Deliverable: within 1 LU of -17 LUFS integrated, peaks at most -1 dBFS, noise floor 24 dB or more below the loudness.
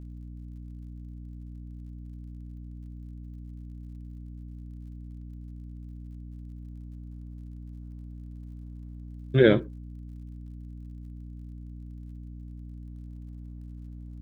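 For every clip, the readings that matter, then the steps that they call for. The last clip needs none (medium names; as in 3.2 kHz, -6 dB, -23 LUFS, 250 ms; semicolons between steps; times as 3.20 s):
tick rate 40 per s; hum 60 Hz; highest harmonic 300 Hz; hum level -39 dBFS; loudness -35.5 LUFS; peak level -6.0 dBFS; loudness target -17.0 LUFS
-> de-click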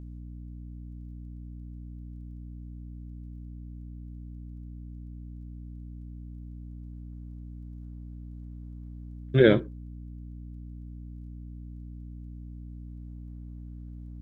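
tick rate 0 per s; hum 60 Hz; highest harmonic 300 Hz; hum level -39 dBFS
-> hum notches 60/120/180/240/300 Hz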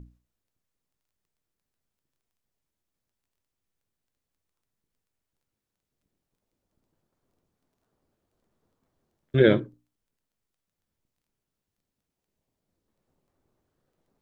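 hum not found; loudness -22.5 LUFS; peak level -5.5 dBFS; loudness target -17.0 LUFS
-> trim +5.5 dB; peak limiter -1 dBFS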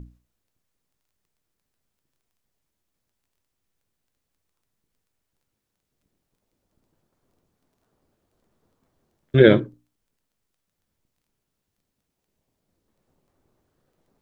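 loudness -17.0 LUFS; peak level -1.0 dBFS; noise floor -80 dBFS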